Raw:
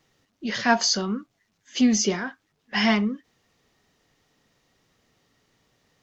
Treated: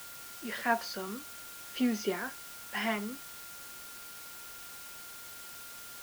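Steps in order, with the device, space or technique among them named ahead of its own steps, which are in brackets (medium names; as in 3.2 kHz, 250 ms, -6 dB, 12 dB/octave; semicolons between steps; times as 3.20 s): shortwave radio (band-pass 290–2700 Hz; tremolo 0.51 Hz, depth 30%; whistle 1.4 kHz -46 dBFS; white noise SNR 9 dB); trim -5.5 dB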